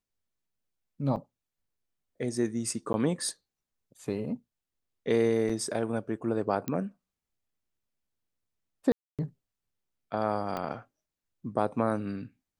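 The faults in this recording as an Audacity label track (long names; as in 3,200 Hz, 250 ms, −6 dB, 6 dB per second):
1.160000	1.170000	drop-out 7.5 ms
2.930000	2.940000	drop-out 11 ms
5.490000	5.500000	drop-out 5.3 ms
6.680000	6.680000	click −18 dBFS
8.920000	9.190000	drop-out 267 ms
10.570000	10.570000	click −20 dBFS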